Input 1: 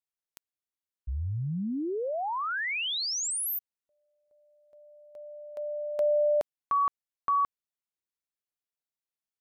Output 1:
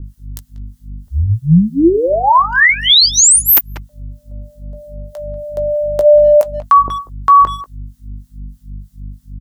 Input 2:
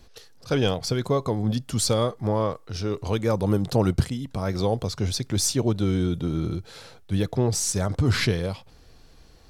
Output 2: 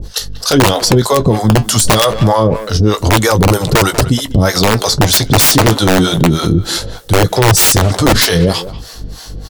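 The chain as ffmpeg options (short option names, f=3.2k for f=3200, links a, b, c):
-filter_complex "[0:a]highshelf=f=3.7k:g=9,aeval=exprs='val(0)+0.00282*(sin(2*PI*50*n/s)+sin(2*PI*2*50*n/s)/2+sin(2*PI*3*50*n/s)/3+sin(2*PI*4*50*n/s)/4+sin(2*PI*5*50*n/s)/5)':c=same,asplit=2[a][b];[b]adelay=18,volume=-11.5dB[c];[a][c]amix=inputs=2:normalize=0,acrossover=split=560[d][e];[d]aeval=exprs='val(0)*(1-1/2+1/2*cos(2*PI*3.2*n/s))':c=same[f];[e]aeval=exprs='val(0)*(1-1/2-1/2*cos(2*PI*3.2*n/s))':c=same[g];[f][g]amix=inputs=2:normalize=0,equalizer=f=2.4k:t=o:w=0.25:g=-10,aeval=exprs='(mod(7.94*val(0)+1,2)-1)/7.94':c=same,asplit=2[h][i];[i]adelay=190,highpass=300,lowpass=3.4k,asoftclip=type=hard:threshold=-28dB,volume=-16dB[j];[h][j]amix=inputs=2:normalize=0,flanger=delay=2.1:depth=4.4:regen=-70:speed=0.27:shape=sinusoidal,alimiter=level_in=30dB:limit=-1dB:release=50:level=0:latency=1,volume=-1dB"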